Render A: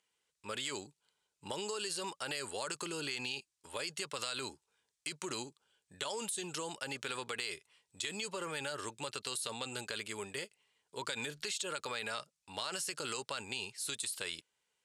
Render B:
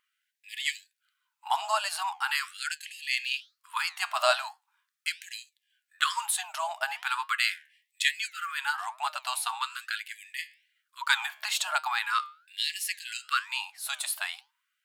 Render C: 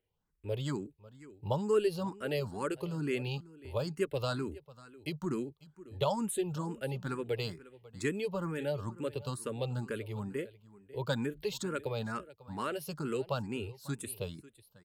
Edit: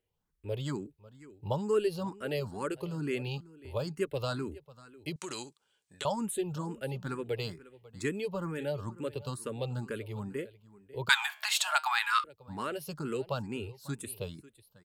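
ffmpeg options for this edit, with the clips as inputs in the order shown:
-filter_complex "[2:a]asplit=3[a][b][c];[a]atrim=end=5.162[d];[0:a]atrim=start=5.158:end=6.052[e];[b]atrim=start=6.048:end=11.092[f];[1:a]atrim=start=11.088:end=12.242[g];[c]atrim=start=12.238[h];[d][e]acrossfade=d=0.004:c1=hsin:c2=hsin[i];[i][f]acrossfade=d=0.004:c1=hsin:c2=hsin[j];[j][g]acrossfade=d=0.004:c1=hsin:c2=hsin[k];[k][h]acrossfade=d=0.004:c1=hsin:c2=hsin"

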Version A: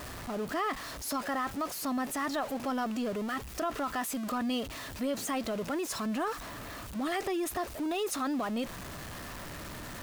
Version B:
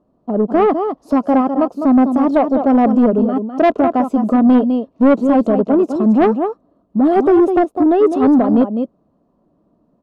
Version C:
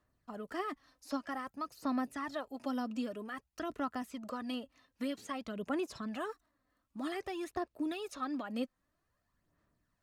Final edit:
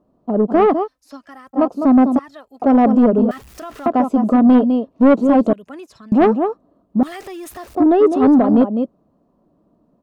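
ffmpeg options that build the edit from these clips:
-filter_complex "[2:a]asplit=3[a][b][c];[0:a]asplit=2[d][e];[1:a]asplit=6[f][g][h][i][j][k];[f]atrim=end=0.88[l];[a]atrim=start=0.82:end=1.59[m];[g]atrim=start=1.53:end=2.192[n];[b]atrim=start=2.188:end=2.622[o];[h]atrim=start=2.618:end=3.312[p];[d]atrim=start=3.308:end=3.862[q];[i]atrim=start=3.858:end=5.532[r];[c]atrim=start=5.528:end=6.122[s];[j]atrim=start=6.118:end=7.032[t];[e]atrim=start=7.028:end=7.752[u];[k]atrim=start=7.748[v];[l][m]acrossfade=d=0.06:c1=tri:c2=tri[w];[w][n]acrossfade=d=0.06:c1=tri:c2=tri[x];[x][o]acrossfade=d=0.004:c1=hsin:c2=hsin[y];[y][p]acrossfade=d=0.004:c1=hsin:c2=hsin[z];[z][q]acrossfade=d=0.004:c1=hsin:c2=hsin[aa];[aa][r]acrossfade=d=0.004:c1=hsin:c2=hsin[ab];[ab][s]acrossfade=d=0.004:c1=hsin:c2=hsin[ac];[ac][t]acrossfade=d=0.004:c1=hsin:c2=hsin[ad];[ad][u]acrossfade=d=0.004:c1=hsin:c2=hsin[ae];[ae][v]acrossfade=d=0.004:c1=hsin:c2=hsin"

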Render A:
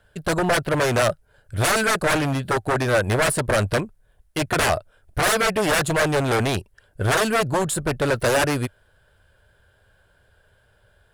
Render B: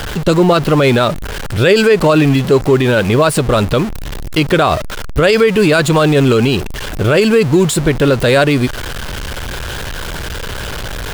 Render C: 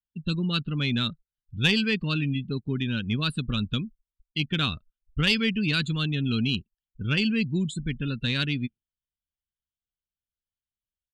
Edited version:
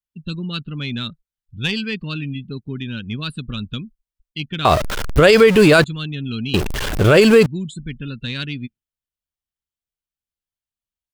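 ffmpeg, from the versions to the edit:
-filter_complex "[1:a]asplit=2[a][b];[2:a]asplit=3[c][d][e];[c]atrim=end=4.652[f];[a]atrim=start=4.648:end=5.842[g];[d]atrim=start=5.838:end=6.542[h];[b]atrim=start=6.538:end=7.462[i];[e]atrim=start=7.458[j];[f][g]acrossfade=d=0.004:c1=hsin:c2=hsin[k];[k][h]acrossfade=d=0.004:c1=hsin:c2=hsin[l];[l][i]acrossfade=d=0.004:c1=hsin:c2=hsin[m];[m][j]acrossfade=d=0.004:c1=hsin:c2=hsin"

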